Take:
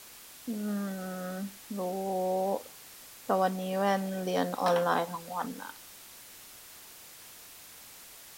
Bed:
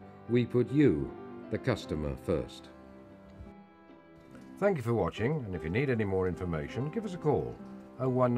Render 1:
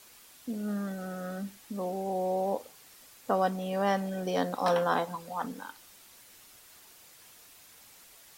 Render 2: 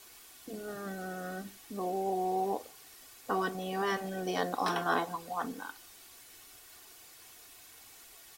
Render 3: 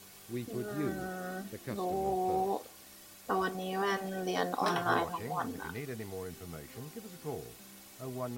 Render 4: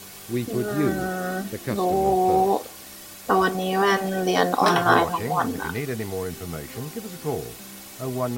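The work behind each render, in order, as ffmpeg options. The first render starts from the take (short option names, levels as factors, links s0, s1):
-af "afftdn=nr=6:nf=-51"
-af "afftfilt=real='re*lt(hypot(re,im),0.224)':imag='im*lt(hypot(re,im),0.224)':win_size=1024:overlap=0.75,aecho=1:1:2.7:0.43"
-filter_complex "[1:a]volume=0.266[s0];[0:a][s0]amix=inputs=2:normalize=0"
-af "volume=3.98"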